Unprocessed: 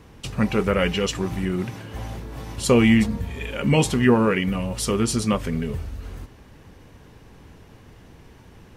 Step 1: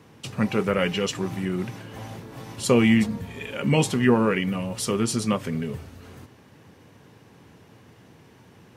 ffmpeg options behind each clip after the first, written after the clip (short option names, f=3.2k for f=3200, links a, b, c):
-af "highpass=f=100:w=0.5412,highpass=f=100:w=1.3066,volume=-2dB"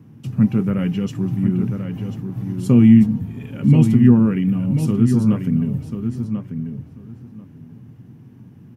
-filter_complex "[0:a]equalizer=f=125:t=o:w=1:g=12,equalizer=f=250:t=o:w=1:g=9,equalizer=f=500:t=o:w=1:g=-8,equalizer=f=1k:t=o:w=1:g=-5,equalizer=f=2k:t=o:w=1:g=-6,equalizer=f=4k:t=o:w=1:g=-10,equalizer=f=8k:t=o:w=1:g=-9,asplit=2[a][b];[b]adelay=1040,lowpass=f=3.6k:p=1,volume=-7.5dB,asplit=2[c][d];[d]adelay=1040,lowpass=f=3.6k:p=1,volume=0.16,asplit=2[e][f];[f]adelay=1040,lowpass=f=3.6k:p=1,volume=0.16[g];[a][c][e][g]amix=inputs=4:normalize=0,volume=-1dB"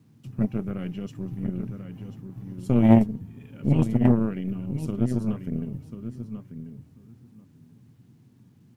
-af "acrusher=bits=9:mix=0:aa=0.000001,aeval=exprs='0.891*(cos(1*acos(clip(val(0)/0.891,-1,1)))-cos(1*PI/2))+0.355*(cos(2*acos(clip(val(0)/0.891,-1,1)))-cos(2*PI/2))+0.178*(cos(3*acos(clip(val(0)/0.891,-1,1)))-cos(3*PI/2))+0.224*(cos(4*acos(clip(val(0)/0.891,-1,1)))-cos(4*PI/2))+0.0316*(cos(6*acos(clip(val(0)/0.891,-1,1)))-cos(6*PI/2))':c=same,volume=-4.5dB"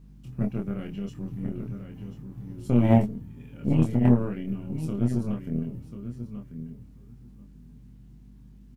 -filter_complex "[0:a]aeval=exprs='val(0)+0.00447*(sin(2*PI*50*n/s)+sin(2*PI*2*50*n/s)/2+sin(2*PI*3*50*n/s)/3+sin(2*PI*4*50*n/s)/4+sin(2*PI*5*50*n/s)/5)':c=same,asplit=2[a][b];[b]adelay=25,volume=-3.5dB[c];[a][c]amix=inputs=2:normalize=0,volume=-3dB"